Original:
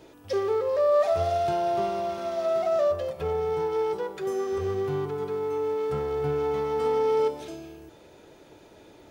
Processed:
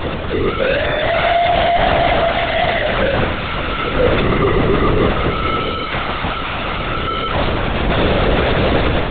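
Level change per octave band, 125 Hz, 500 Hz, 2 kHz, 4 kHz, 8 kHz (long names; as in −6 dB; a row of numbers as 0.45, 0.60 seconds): +18.5 dB, +7.0 dB, +25.5 dB, +24.0 dB, can't be measured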